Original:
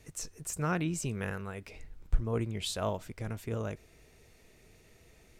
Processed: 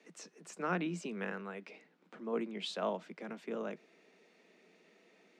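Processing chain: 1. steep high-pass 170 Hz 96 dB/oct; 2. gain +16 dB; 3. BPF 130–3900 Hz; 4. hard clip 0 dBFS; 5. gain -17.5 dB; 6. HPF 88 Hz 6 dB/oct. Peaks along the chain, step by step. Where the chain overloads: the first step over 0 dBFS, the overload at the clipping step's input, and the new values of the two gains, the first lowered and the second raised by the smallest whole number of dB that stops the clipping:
-19.5, -3.5, -2.5, -2.5, -20.0, -20.5 dBFS; no overload

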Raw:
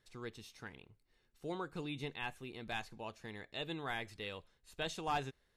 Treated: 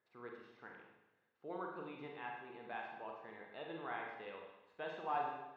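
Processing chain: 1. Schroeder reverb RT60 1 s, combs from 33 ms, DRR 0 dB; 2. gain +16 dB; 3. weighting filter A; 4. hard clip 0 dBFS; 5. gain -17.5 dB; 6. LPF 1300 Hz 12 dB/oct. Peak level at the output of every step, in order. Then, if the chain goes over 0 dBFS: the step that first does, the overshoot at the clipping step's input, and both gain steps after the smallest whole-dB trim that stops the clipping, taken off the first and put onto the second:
-23.5, -7.5, -6.0, -6.0, -23.5, -26.5 dBFS; no overload

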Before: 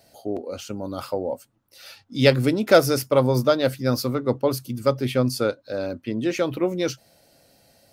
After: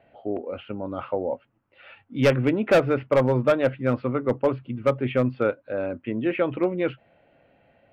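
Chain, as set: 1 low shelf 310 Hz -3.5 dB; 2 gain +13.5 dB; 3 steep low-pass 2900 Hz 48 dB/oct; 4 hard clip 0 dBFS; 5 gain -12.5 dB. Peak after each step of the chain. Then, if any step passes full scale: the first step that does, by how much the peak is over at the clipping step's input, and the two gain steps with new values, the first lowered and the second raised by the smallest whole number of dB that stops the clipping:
-3.0, +10.5, +10.0, 0.0, -12.5 dBFS; step 2, 10.0 dB; step 2 +3.5 dB, step 5 -2.5 dB

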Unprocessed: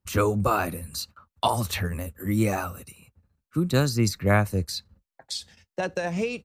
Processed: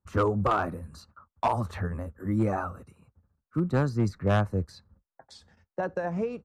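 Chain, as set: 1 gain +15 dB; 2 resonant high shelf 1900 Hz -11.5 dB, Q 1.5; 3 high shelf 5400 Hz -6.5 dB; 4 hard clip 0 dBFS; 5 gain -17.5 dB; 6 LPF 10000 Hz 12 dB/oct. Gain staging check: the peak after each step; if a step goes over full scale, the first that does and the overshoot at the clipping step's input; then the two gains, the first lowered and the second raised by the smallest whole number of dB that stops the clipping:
+9.0, +8.5, +8.5, 0.0, -17.5, -17.5 dBFS; step 1, 8.5 dB; step 1 +6 dB, step 5 -8.5 dB

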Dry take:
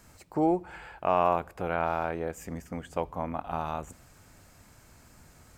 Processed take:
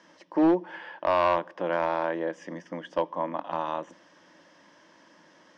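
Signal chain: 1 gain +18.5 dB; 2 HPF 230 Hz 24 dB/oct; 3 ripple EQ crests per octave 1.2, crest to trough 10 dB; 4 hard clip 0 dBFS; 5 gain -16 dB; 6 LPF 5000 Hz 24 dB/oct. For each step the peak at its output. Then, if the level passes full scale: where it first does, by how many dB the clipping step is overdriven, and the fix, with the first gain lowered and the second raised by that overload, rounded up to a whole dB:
+6.0, +7.5, +7.0, 0.0, -16.0, -15.5 dBFS; step 1, 7.0 dB; step 1 +11.5 dB, step 5 -9 dB

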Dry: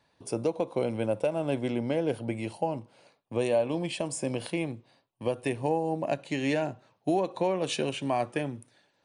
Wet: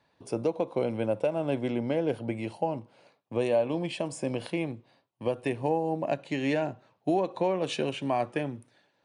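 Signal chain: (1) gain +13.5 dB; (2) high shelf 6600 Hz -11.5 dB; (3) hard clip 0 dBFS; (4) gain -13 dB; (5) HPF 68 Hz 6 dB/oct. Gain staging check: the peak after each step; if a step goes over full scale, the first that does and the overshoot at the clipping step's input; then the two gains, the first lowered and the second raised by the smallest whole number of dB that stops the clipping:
-2.0, -2.0, -2.0, -15.0, -15.5 dBFS; no overload

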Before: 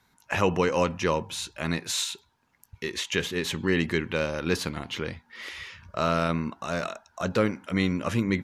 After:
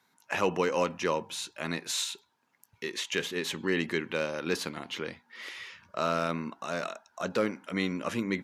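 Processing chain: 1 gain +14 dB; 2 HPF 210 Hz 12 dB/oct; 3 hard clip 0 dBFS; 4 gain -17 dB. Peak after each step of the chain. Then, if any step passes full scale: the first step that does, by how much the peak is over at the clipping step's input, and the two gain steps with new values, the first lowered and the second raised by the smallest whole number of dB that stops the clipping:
+5.0, +4.0, 0.0, -17.0 dBFS; step 1, 4.0 dB; step 1 +10 dB, step 4 -13 dB

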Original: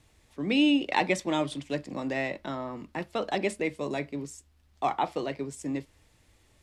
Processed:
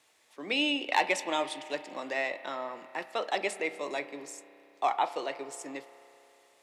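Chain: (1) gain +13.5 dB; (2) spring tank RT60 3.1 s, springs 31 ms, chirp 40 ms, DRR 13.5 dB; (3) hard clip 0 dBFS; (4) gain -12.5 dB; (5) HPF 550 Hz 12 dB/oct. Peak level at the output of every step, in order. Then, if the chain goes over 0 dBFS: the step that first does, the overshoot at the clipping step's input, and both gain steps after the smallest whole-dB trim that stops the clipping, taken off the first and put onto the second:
+4.5, +4.0, 0.0, -12.5, -11.0 dBFS; step 1, 4.0 dB; step 1 +9.5 dB, step 4 -8.5 dB

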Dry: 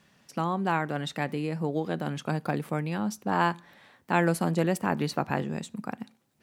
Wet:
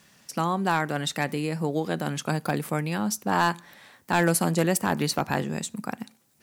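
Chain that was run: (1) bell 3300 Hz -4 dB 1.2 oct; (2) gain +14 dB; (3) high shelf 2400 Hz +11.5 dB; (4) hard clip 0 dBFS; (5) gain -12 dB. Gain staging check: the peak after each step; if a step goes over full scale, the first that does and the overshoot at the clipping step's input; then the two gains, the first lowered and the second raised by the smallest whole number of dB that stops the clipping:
-9.0, +5.0, +7.5, 0.0, -12.0 dBFS; step 2, 7.5 dB; step 2 +6 dB, step 5 -4 dB

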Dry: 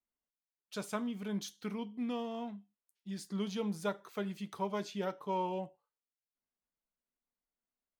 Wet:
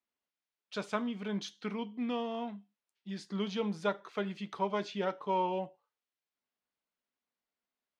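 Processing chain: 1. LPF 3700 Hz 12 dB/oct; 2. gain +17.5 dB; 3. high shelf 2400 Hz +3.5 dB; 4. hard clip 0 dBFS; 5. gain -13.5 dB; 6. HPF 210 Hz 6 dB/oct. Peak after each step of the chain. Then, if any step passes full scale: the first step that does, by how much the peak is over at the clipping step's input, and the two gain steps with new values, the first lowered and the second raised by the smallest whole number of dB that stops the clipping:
-22.5, -5.0, -4.0, -4.0, -17.5, -16.5 dBFS; no overload

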